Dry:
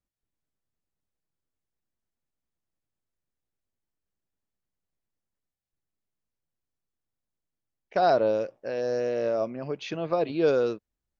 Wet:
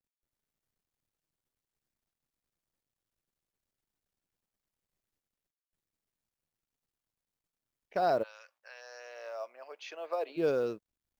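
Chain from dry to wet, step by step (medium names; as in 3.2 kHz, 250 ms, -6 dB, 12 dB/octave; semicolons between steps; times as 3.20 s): 8.22–10.36 s: high-pass 1.3 kHz -> 420 Hz 24 dB/octave; dynamic bell 3.7 kHz, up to -4 dB, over -57 dBFS, Q 4; companded quantiser 8-bit; trim -6.5 dB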